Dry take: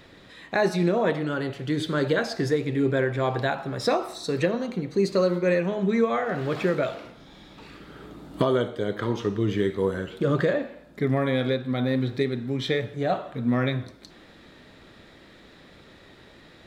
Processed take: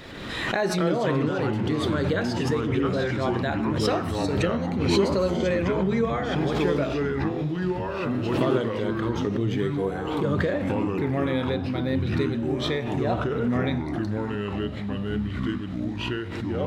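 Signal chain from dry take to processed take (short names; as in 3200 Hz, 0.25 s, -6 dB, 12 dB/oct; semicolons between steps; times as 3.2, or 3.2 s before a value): 2.66–3.11 dispersion highs, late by 0.114 s, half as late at 2200 Hz; echoes that change speed 0.104 s, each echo -4 st, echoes 3; backwards sustainer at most 35 dB/s; gain -3 dB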